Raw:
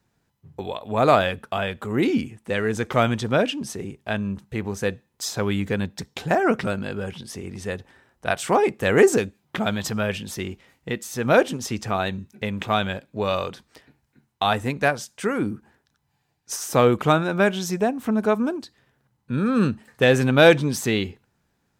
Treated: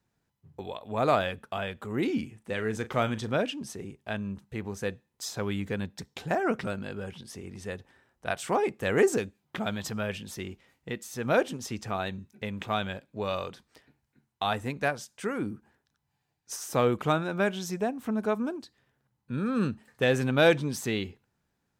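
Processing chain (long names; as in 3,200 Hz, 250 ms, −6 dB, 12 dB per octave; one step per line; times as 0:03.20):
0:02.13–0:03.36: double-tracking delay 37 ms −13 dB
level −7.5 dB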